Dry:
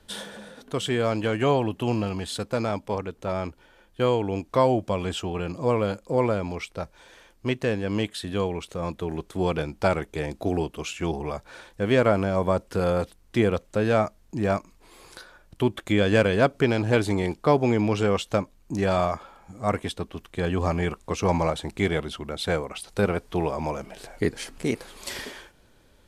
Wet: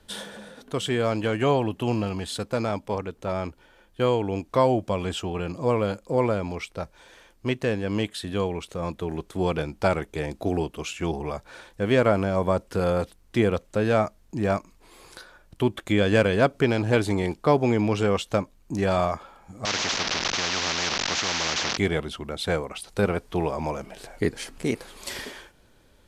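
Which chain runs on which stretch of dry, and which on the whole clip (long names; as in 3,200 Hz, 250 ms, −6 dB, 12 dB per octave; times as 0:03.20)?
0:19.65–0:21.77: linear delta modulator 32 kbit/s, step −29.5 dBFS + band-pass filter 260–3,200 Hz + every bin compressed towards the loudest bin 10 to 1
whole clip: no processing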